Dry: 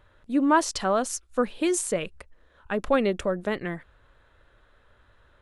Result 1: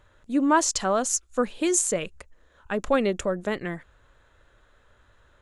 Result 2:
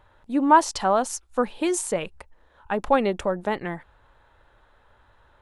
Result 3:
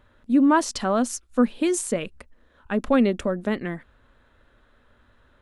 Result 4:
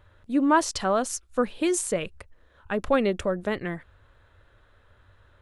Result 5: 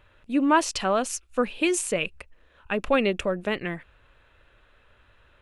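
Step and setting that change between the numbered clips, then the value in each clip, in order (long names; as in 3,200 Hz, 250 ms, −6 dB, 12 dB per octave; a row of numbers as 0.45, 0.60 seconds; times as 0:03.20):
parametric band, centre frequency: 6,900, 860, 240, 91, 2,600 Hertz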